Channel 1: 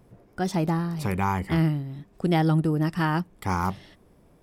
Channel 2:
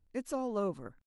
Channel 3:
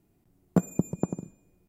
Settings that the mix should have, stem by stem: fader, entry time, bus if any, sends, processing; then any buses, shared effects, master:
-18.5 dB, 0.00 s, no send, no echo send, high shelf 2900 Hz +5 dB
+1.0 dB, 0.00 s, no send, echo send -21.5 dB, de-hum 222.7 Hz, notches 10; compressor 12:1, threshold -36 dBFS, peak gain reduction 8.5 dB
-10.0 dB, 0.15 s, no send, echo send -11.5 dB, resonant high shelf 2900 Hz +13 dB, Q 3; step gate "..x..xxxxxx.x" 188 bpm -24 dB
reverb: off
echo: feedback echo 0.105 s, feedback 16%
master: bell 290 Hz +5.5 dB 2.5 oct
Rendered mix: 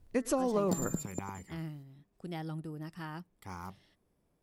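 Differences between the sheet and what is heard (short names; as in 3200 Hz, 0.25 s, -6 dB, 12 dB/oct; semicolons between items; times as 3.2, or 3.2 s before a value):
stem 2 +1.0 dB -> +10.0 dB; master: missing bell 290 Hz +5.5 dB 2.5 oct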